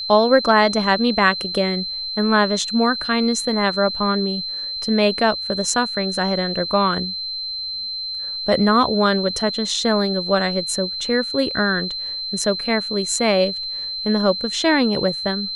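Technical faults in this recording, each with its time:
whine 4.1 kHz -25 dBFS

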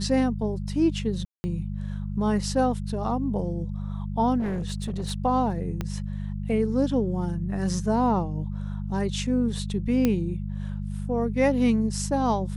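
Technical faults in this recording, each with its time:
hum 50 Hz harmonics 4 -31 dBFS
1.25–1.44 s: dropout 190 ms
4.39–5.12 s: clipped -24.5 dBFS
5.81 s: pop -16 dBFS
10.05 s: pop -10 dBFS

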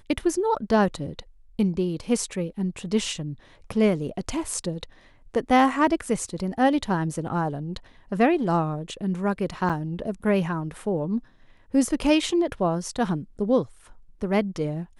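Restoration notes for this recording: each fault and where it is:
9.69–9.70 s: dropout 6.7 ms

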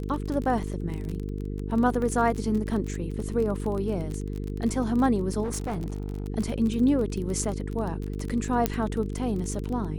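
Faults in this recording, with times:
buzz 50 Hz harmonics 9 -32 dBFS
crackle 30 per s -30 dBFS
2.02 s: dropout 2.2 ms
5.43–6.28 s: clipped -26 dBFS
8.66 s: pop -8 dBFS

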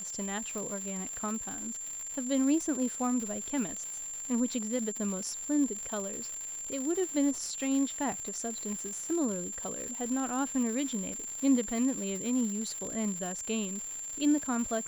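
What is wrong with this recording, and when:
crackle 260 per s -36 dBFS
whine 7.3 kHz -37 dBFS
0.58 s: pop

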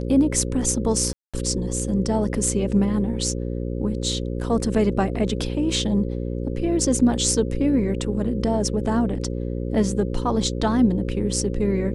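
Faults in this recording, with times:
buzz 60 Hz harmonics 9 -27 dBFS
1.13–1.34 s: dropout 206 ms

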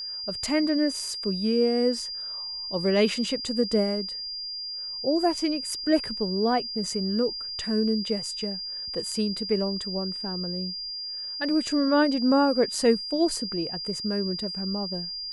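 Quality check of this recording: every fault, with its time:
whine 4.8 kHz -32 dBFS

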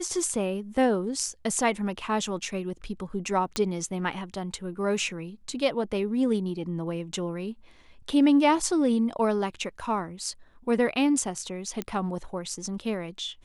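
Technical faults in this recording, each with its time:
3.56 s: pop -13 dBFS
11.82 s: pop -16 dBFS

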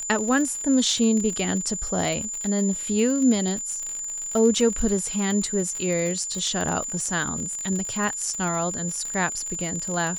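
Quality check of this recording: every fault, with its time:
crackle 61 per s -28 dBFS
whine 7.1 kHz -29 dBFS

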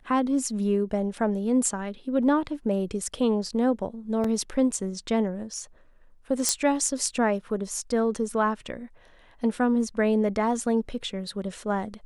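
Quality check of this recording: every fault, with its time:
4.24 s: dropout 3.9 ms
6.49 s: pop -7 dBFS

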